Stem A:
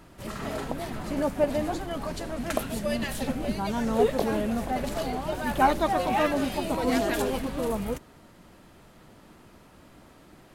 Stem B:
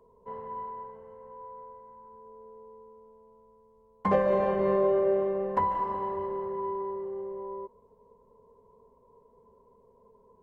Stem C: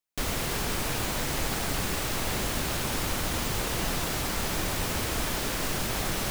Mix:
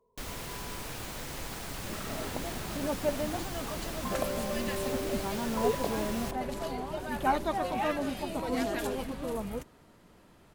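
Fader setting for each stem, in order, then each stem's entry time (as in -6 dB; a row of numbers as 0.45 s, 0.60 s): -6.0 dB, -11.5 dB, -10.0 dB; 1.65 s, 0.00 s, 0.00 s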